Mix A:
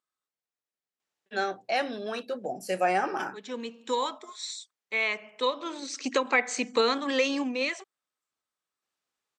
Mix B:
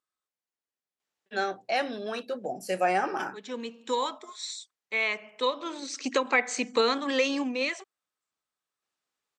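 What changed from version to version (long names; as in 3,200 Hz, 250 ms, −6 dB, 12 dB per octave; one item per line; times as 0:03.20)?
nothing changed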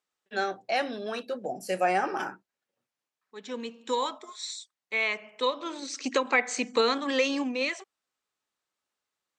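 first voice: entry −1.00 s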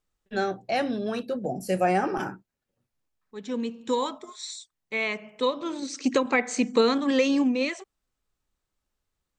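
master: remove meter weighting curve A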